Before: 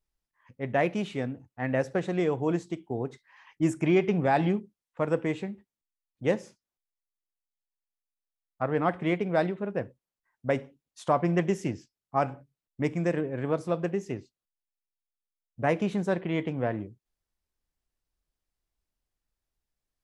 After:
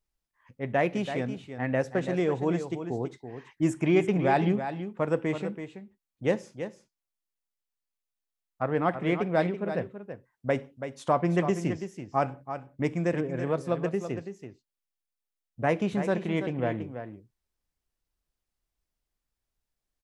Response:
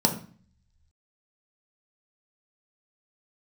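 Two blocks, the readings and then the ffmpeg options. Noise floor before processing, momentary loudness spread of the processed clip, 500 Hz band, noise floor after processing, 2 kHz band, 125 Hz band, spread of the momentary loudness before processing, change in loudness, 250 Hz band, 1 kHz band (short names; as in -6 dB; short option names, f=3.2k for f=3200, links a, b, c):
under -85 dBFS, 14 LU, +0.5 dB, under -85 dBFS, +0.5 dB, +0.5 dB, 12 LU, 0.0 dB, +0.5 dB, +0.5 dB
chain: -af "aecho=1:1:331:0.335"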